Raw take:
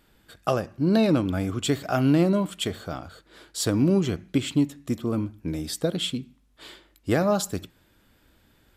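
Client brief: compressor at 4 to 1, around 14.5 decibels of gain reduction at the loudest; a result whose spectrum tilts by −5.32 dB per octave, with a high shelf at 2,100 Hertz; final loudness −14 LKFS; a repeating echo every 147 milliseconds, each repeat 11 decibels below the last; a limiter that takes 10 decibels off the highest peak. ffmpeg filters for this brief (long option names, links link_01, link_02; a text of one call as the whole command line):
ffmpeg -i in.wav -af "highshelf=frequency=2100:gain=-6,acompressor=threshold=-35dB:ratio=4,alimiter=level_in=6dB:limit=-24dB:level=0:latency=1,volume=-6dB,aecho=1:1:147|294|441:0.282|0.0789|0.0221,volume=26.5dB" out.wav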